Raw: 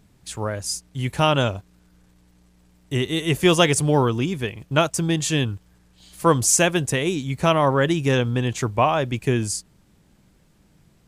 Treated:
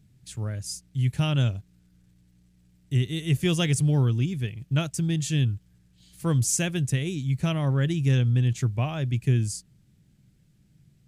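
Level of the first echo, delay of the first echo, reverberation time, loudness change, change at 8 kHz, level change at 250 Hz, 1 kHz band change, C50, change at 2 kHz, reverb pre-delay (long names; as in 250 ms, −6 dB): no echo audible, no echo audible, no reverb audible, −4.5 dB, −7.5 dB, −4.5 dB, −17.0 dB, no reverb audible, −10.0 dB, no reverb audible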